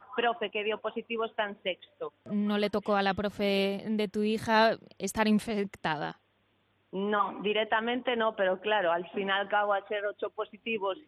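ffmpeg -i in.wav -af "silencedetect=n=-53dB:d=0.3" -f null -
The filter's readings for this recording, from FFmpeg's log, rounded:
silence_start: 6.16
silence_end: 6.93 | silence_duration: 0.77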